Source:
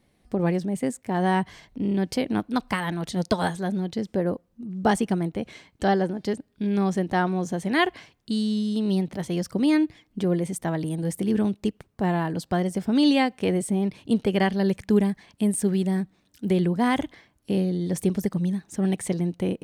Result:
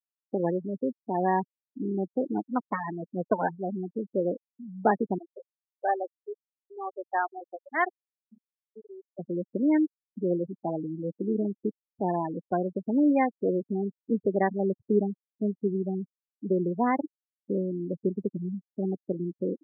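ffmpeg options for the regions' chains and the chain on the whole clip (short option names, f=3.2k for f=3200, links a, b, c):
-filter_complex "[0:a]asettb=1/sr,asplit=3[a][b][c];[a]atrim=end=5.184[d];[b]atrim=start=5.18:end=9.19,asetpts=PTS-STARTPTS,afade=t=in:d=0.004:c=qsin,afade=t=out:st=4.006:d=0.004:c=qsin,highpass=610,lowpass=5.3k,aeval=exprs='val(0)*gte(abs(val(0)),0.00596)':c=same[e];[c]atrim=start=9.186[f];[d][e]acrossfade=d=0.004:c1=hsin:c2=qsin[g];[g][f]acrossfade=d=0.004:c1=qsin:c2=hsin,lowpass=1.9k,afftfilt=real='re*gte(hypot(re,im),0.112)':imag='im*gte(hypot(re,im),0.112)':win_size=1024:overlap=0.75,highpass=280"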